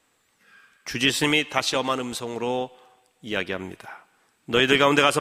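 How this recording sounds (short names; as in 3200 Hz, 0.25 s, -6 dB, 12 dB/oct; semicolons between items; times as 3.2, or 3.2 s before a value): noise floor -67 dBFS; spectral tilt -3.0 dB/oct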